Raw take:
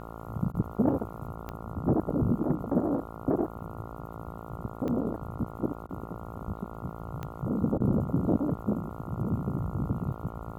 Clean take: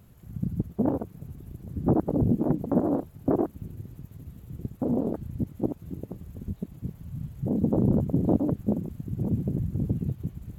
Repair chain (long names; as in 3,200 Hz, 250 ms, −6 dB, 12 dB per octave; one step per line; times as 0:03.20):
click removal
hum removal 56 Hz, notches 25
repair the gap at 0:00.52/0:05.87/0:07.78, 21 ms
level 0 dB, from 0:01.31 +3 dB